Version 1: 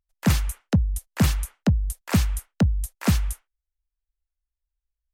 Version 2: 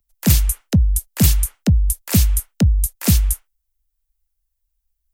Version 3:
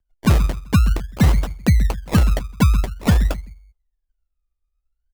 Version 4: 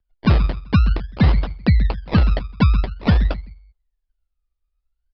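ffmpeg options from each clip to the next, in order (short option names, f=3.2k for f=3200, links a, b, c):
-filter_complex "[0:a]lowshelf=f=65:g=8.5,acrossover=split=140|660|2000[a][b][c][d];[c]acompressor=threshold=-44dB:ratio=6[e];[d]aemphasis=mode=production:type=50kf[f];[a][b][e][f]amix=inputs=4:normalize=0,volume=3dB"
-filter_complex "[0:a]asplit=2[a][b];[b]adelay=129,lowpass=f=1.2k:p=1,volume=-12.5dB,asplit=2[c][d];[d]adelay=129,lowpass=f=1.2k:p=1,volume=0.34,asplit=2[e][f];[f]adelay=129,lowpass=f=1.2k:p=1,volume=0.34[g];[a][c][e][g]amix=inputs=4:normalize=0,adynamicsmooth=sensitivity=7.5:basefreq=1.8k,acrusher=samples=28:mix=1:aa=0.000001:lfo=1:lforange=16.8:lforate=0.49"
-af "aresample=11025,aresample=44100"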